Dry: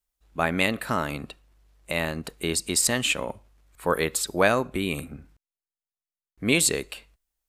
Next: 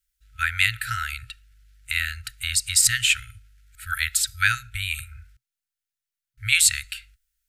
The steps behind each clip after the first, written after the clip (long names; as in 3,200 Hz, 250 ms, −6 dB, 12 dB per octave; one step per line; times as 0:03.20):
brick-wall band-stop 120–1,300 Hz
level +5 dB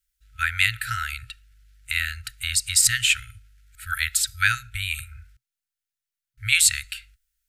no processing that can be heard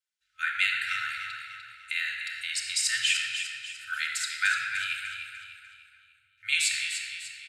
band-pass filter 500–6,600 Hz
repeating echo 298 ms, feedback 43%, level −8.5 dB
convolution reverb RT60 2.0 s, pre-delay 3 ms, DRR −1 dB
level −7.5 dB